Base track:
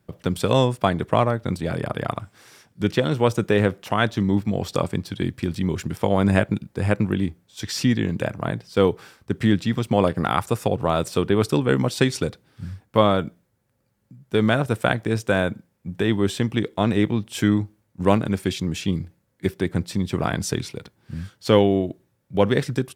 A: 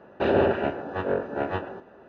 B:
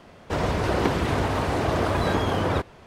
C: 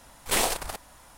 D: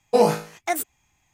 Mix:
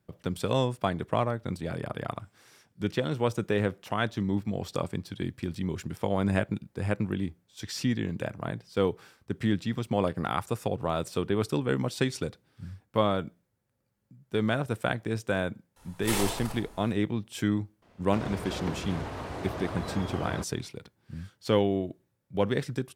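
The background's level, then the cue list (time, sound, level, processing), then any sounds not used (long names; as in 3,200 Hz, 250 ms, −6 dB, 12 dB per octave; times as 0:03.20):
base track −8 dB
0:15.76: mix in C −9 dB + rectangular room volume 3,200 cubic metres, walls furnished, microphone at 4.2 metres
0:17.82: mix in B −12.5 dB + gate on every frequency bin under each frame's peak −55 dB strong
not used: A, D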